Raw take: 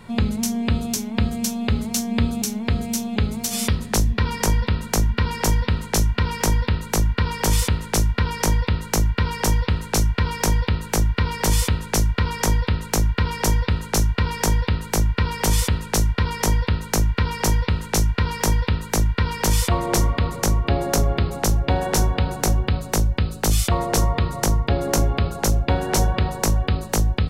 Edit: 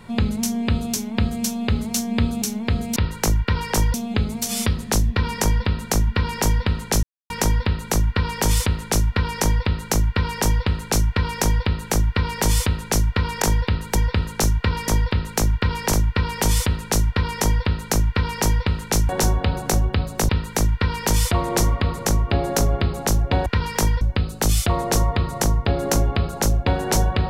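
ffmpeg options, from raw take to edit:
-filter_complex "[0:a]asplit=13[a][b][c][d][e][f][g][h][i][j][k][l][m];[a]atrim=end=2.962[n];[b]atrim=start=8.658:end=9.642[o];[c]atrim=start=2.958:end=6.05,asetpts=PTS-STARTPTS,afade=t=out:st=3.088:d=0.004:c=hsin[p];[d]atrim=start=6.05:end=6.32,asetpts=PTS-STARTPTS,volume=0[q];[e]atrim=start=6.32:end=12.442,asetpts=PTS-STARTPTS,afade=t=in:d=0.004:c=hsin[r];[f]atrim=start=14.418:end=14.952[s];[g]atrim=start=13.488:end=14.422[t];[h]atrim=start=12.438:end=13.492[u];[i]atrim=start=14.948:end=18.112[v];[j]atrim=start=21.828:end=23.032[w];[k]atrim=start=18.658:end=21.832[x];[l]atrim=start=18.108:end=18.662[y];[m]atrim=start=23.028[z];[n][o]acrossfade=d=0.004:c1=hsin:c2=hsin[aa];[p][q][r]concat=n=3:v=0:a=1[ab];[aa][ab]acrossfade=d=0.004:c1=hsin:c2=hsin[ac];[ac][s]acrossfade=d=0.004:c1=hsin:c2=hsin[ad];[ad][t]acrossfade=d=0.004:c1=hsin:c2=hsin[ae];[ae][u]acrossfade=d=0.004:c1=hsin:c2=hsin[af];[af][v]acrossfade=d=0.004:c1=hsin:c2=hsin[ag];[ag][w]acrossfade=d=0.004:c1=hsin:c2=hsin[ah];[ah][x]acrossfade=d=0.004:c1=hsin:c2=hsin[ai];[ai][y]acrossfade=d=0.004:c1=hsin:c2=hsin[aj];[aj][z]acrossfade=d=0.004:c1=hsin:c2=hsin"

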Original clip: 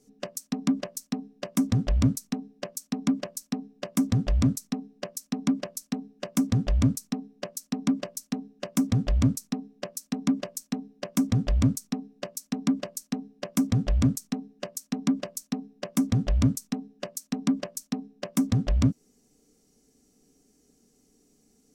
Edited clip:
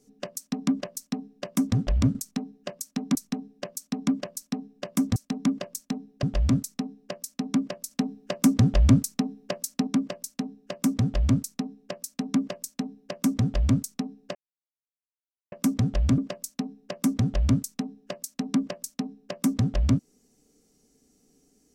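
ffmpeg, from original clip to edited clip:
-filter_complex "[0:a]asplit=10[a][b][c][d][e][f][g][h][i][j];[a]atrim=end=2.152[k];[b]atrim=start=14.108:end=15.112[l];[c]atrim=start=2.148:end=4.162[m];[d]atrim=start=9.978:end=11.052[n];[e]atrim=start=4.158:end=5.842[o];[f]atrim=start=5.838:end=7.802,asetpts=PTS-STARTPTS,volume=4.5dB[p];[g]atrim=start=7.798:end=12.28,asetpts=PTS-STARTPTS,afade=t=out:st=4.478:d=0.004:c=hsin[q];[h]atrim=start=12.28:end=13.45,asetpts=PTS-STARTPTS,volume=0[r];[i]atrim=start=13.45:end=14.112,asetpts=PTS-STARTPTS,afade=t=in:d=0.004:c=hsin[s];[j]atrim=start=15.108[t];[k][l]acrossfade=d=0.004:c1=hsin:c2=hsin[u];[u][m]acrossfade=d=0.004:c1=hsin:c2=hsin[v];[v][n]acrossfade=d=0.004:c1=hsin:c2=hsin[w];[w][o]acrossfade=d=0.004:c1=hsin:c2=hsin[x];[x][p]acrossfade=d=0.004:c1=hsin:c2=hsin[y];[q][r][s]concat=n=3:v=0:a=1[z];[y][z]acrossfade=d=0.004:c1=hsin:c2=hsin[aa];[aa][t]acrossfade=d=0.004:c1=hsin:c2=hsin"

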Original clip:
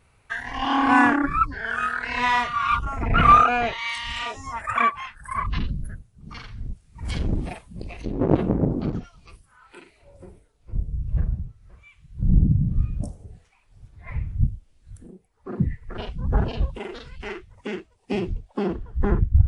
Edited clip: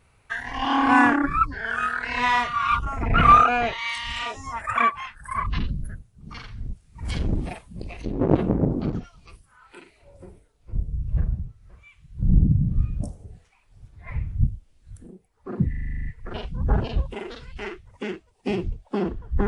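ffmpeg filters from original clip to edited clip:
-filter_complex "[0:a]asplit=10[a][b][c][d][e][f][g][h][i][j];[a]atrim=end=15.732[k];[b]atrim=start=15.688:end=15.732[l];[c]atrim=start=15.688:end=15.732[m];[d]atrim=start=15.688:end=15.732[n];[e]atrim=start=15.688:end=15.732[o];[f]atrim=start=15.688:end=15.732[p];[g]atrim=start=15.688:end=15.732[q];[h]atrim=start=15.688:end=15.732[r];[i]atrim=start=15.688:end=15.732[s];[j]atrim=start=15.688[t];[k][l]acrossfade=d=0.004:c1=hsin:c2=hsin[u];[u][m]acrossfade=d=0.004:c1=hsin:c2=hsin[v];[v][n]acrossfade=d=0.004:c1=hsin:c2=hsin[w];[w][o]acrossfade=d=0.004:c1=hsin:c2=hsin[x];[x][p]acrossfade=d=0.004:c1=hsin:c2=hsin[y];[y][q]acrossfade=d=0.004:c1=hsin:c2=hsin[z];[z][r]acrossfade=d=0.004:c1=hsin:c2=hsin[aa];[aa][s]acrossfade=d=0.004:c1=hsin:c2=hsin[ab];[ab][t]acrossfade=d=0.004:c1=hsin:c2=hsin"

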